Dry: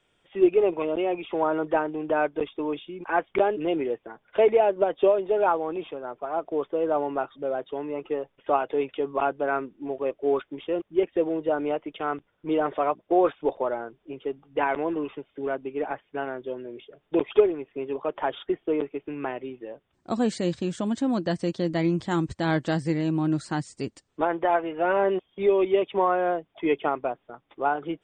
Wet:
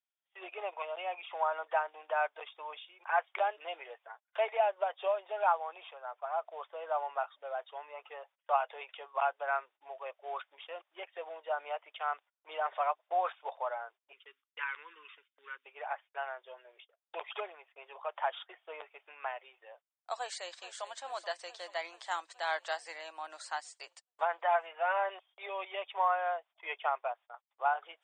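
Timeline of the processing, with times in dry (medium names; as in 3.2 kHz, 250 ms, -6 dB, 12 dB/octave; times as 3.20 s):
14.12–15.66 s: Butterworth band-stop 690 Hz, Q 0.71
20.15–20.91 s: echo throw 430 ms, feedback 70%, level -13.5 dB
whole clip: gate -44 dBFS, range -25 dB; steep high-pass 660 Hz 36 dB/octave; trim -4 dB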